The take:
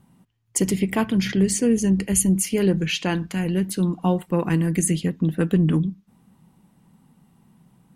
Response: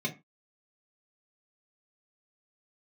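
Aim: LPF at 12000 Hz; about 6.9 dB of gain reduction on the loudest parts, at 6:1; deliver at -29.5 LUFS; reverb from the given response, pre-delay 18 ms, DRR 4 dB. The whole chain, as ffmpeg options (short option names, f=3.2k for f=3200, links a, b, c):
-filter_complex "[0:a]lowpass=12k,acompressor=threshold=-22dB:ratio=6,asplit=2[a][b];[1:a]atrim=start_sample=2205,adelay=18[c];[b][c]afir=irnorm=-1:irlink=0,volume=-9.5dB[d];[a][d]amix=inputs=2:normalize=0,volume=-7.5dB"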